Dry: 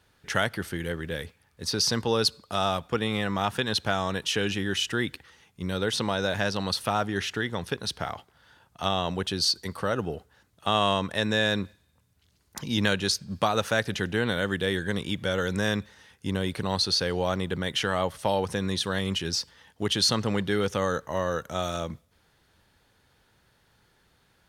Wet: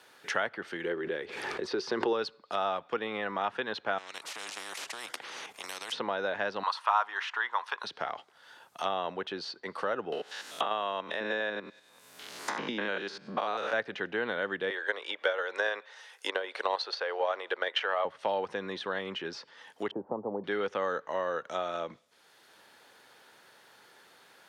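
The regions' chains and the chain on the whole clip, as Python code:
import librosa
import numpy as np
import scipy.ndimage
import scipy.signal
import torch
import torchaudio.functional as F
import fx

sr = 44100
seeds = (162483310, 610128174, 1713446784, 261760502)

y = fx.chain(x, sr, fx.peak_eq(hz=370.0, db=14.0, octaves=0.32),
    fx.pre_swell(db_per_s=39.0), at=(0.84, 2.13))
y = fx.chain(y, sr, fx.high_shelf(hz=5000.0, db=-2.5),
    fx.level_steps(step_db=10),
    fx.spectral_comp(ratio=10.0), at=(3.98, 5.92))
y = fx.chain(y, sr, fx.highpass_res(hz=1000.0, q=5.0),
    fx.high_shelf(hz=5300.0, db=11.5), at=(6.63, 7.84))
y = fx.chain(y, sr, fx.spec_steps(hold_ms=100),
    fx.low_shelf(hz=130.0, db=-12.0),
    fx.band_squash(depth_pct=100), at=(10.12, 13.73))
y = fx.chain(y, sr, fx.highpass(hz=480.0, slope=24),
    fx.transient(attack_db=11, sustain_db=4), at=(14.7, 18.05))
y = fx.chain(y, sr, fx.ellip_lowpass(hz=890.0, order=4, stop_db=80),
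    fx.band_squash(depth_pct=70), at=(19.91, 20.44))
y = fx.env_lowpass_down(y, sr, base_hz=2200.0, full_db=-26.0)
y = scipy.signal.sosfilt(scipy.signal.butter(2, 400.0, 'highpass', fs=sr, output='sos'), y)
y = fx.band_squash(y, sr, depth_pct=40)
y = y * 10.0 ** (-2.5 / 20.0)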